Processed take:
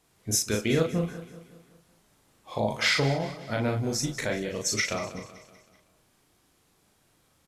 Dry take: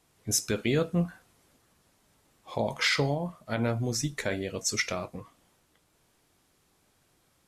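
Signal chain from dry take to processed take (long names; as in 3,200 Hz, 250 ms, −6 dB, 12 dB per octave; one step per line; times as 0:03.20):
double-tracking delay 37 ms −3 dB
on a send: repeating echo 189 ms, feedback 49%, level −15 dB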